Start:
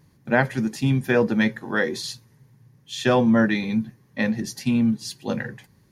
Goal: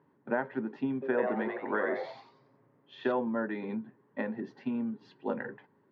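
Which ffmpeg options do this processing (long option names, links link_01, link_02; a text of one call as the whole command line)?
ffmpeg -i in.wav -filter_complex "[0:a]acompressor=threshold=-23dB:ratio=6,highpass=220,equalizer=frequency=270:width_type=q:width=4:gain=7,equalizer=frequency=410:width_type=q:width=4:gain=10,equalizer=frequency=600:width_type=q:width=4:gain=5,equalizer=frequency=930:width_type=q:width=4:gain=10,equalizer=frequency=1400:width_type=q:width=4:gain=6,equalizer=frequency=2300:width_type=q:width=4:gain=-6,lowpass=frequency=2600:width=0.5412,lowpass=frequency=2600:width=1.3066,asettb=1/sr,asplit=3[link_01][link_02][link_03];[link_01]atrim=end=0.934[link_04];[link_02]atrim=start=0.93:end=3.12,asetpts=PTS-STARTPTS,afade=type=in:duration=0.004:curve=qsin,afade=type=out:start_time=2.186:duration=0.004:curve=qsin,asplit=6[link_05][link_06][link_07][link_08][link_09][link_10];[link_06]adelay=90,afreqshift=140,volume=-3.5dB[link_11];[link_07]adelay=180,afreqshift=280,volume=-11.9dB[link_12];[link_08]adelay=270,afreqshift=420,volume=-20.3dB[link_13];[link_09]adelay=360,afreqshift=560,volume=-28.7dB[link_14];[link_10]adelay=450,afreqshift=700,volume=-37.1dB[link_15];[link_05][link_11][link_12][link_13][link_14][link_15]amix=inputs=6:normalize=0,atrim=end_sample=96579[link_16];[link_03]atrim=start=3.116[link_17];[link_04][link_16]acrossfade=duration=0.004:curve1=hsin:curve2=qsin[link_18];[link_18][link_17]acrossfade=duration=0.004:curve1=qsin:curve2=hsin,volume=-8.5dB" out.wav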